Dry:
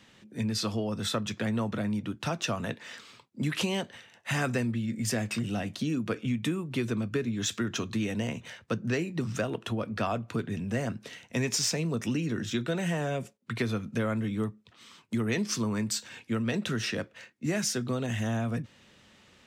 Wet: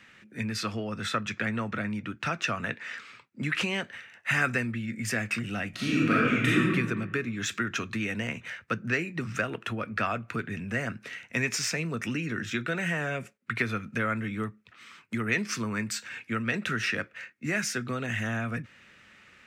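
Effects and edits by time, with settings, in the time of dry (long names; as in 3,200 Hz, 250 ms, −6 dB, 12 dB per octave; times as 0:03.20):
0:00.63–0:03.82: parametric band 12,000 Hz −8 dB 0.54 octaves
0:05.70–0:06.68: thrown reverb, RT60 1.4 s, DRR −7.5 dB
whole clip: flat-topped bell 1,800 Hz +10.5 dB 1.3 octaves; level −2.5 dB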